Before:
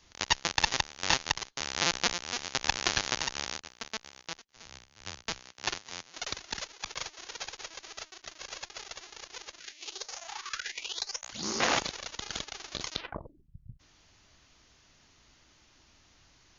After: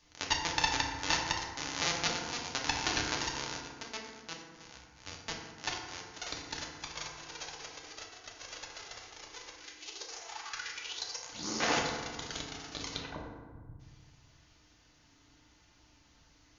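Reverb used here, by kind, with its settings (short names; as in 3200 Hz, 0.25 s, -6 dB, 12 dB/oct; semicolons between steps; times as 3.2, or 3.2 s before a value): FDN reverb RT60 1.5 s, low-frequency decay 1.5×, high-frequency decay 0.45×, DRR -1 dB; gain -5.5 dB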